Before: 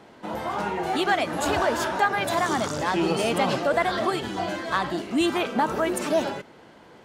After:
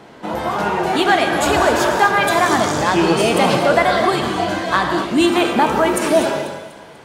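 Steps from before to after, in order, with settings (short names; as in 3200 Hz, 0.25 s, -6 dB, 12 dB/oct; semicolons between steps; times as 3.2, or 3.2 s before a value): thinning echo 0.245 s, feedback 45%, high-pass 420 Hz, level -15 dB; non-linear reverb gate 0.29 s flat, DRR 4.5 dB; gain +7.5 dB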